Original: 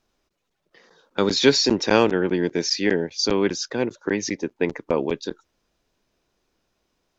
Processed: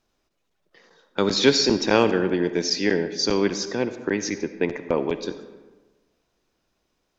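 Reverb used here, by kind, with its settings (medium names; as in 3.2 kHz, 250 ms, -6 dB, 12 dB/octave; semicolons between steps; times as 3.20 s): algorithmic reverb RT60 1.3 s, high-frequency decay 0.6×, pre-delay 25 ms, DRR 10.5 dB; trim -1 dB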